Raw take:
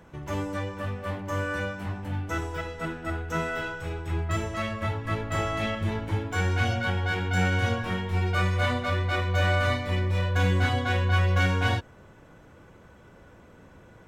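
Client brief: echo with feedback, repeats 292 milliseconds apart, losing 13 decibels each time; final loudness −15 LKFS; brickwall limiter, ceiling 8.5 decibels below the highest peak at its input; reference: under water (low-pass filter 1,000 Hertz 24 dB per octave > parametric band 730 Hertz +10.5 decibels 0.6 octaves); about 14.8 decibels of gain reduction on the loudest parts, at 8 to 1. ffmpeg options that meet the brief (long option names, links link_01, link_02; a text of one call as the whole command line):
ffmpeg -i in.wav -af "acompressor=threshold=-35dB:ratio=8,alimiter=level_in=9dB:limit=-24dB:level=0:latency=1,volume=-9dB,lowpass=frequency=1000:width=0.5412,lowpass=frequency=1000:width=1.3066,equalizer=frequency=730:width_type=o:width=0.6:gain=10.5,aecho=1:1:292|584|876:0.224|0.0493|0.0108,volume=26dB" out.wav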